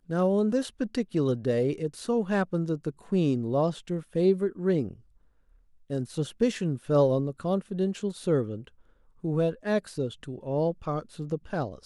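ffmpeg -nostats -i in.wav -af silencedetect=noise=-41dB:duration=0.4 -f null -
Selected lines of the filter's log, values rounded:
silence_start: 4.93
silence_end: 5.90 | silence_duration: 0.97
silence_start: 8.68
silence_end: 9.24 | silence_duration: 0.56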